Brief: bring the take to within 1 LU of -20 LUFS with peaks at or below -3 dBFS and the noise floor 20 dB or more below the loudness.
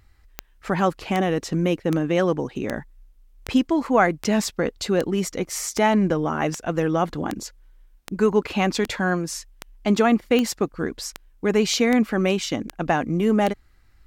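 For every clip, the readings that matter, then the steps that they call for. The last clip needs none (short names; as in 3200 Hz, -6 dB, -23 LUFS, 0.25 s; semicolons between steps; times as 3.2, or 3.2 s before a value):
clicks 18; loudness -22.5 LUFS; peak -6.0 dBFS; loudness target -20.0 LUFS
-> de-click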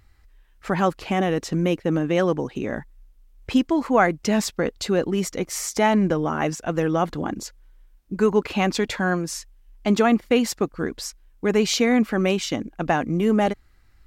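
clicks 0; loudness -22.5 LUFS; peak -6.0 dBFS; loudness target -20.0 LUFS
-> gain +2.5 dB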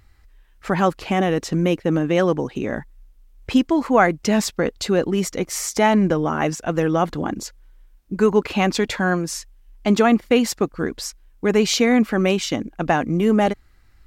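loudness -20.0 LUFS; peak -3.5 dBFS; noise floor -53 dBFS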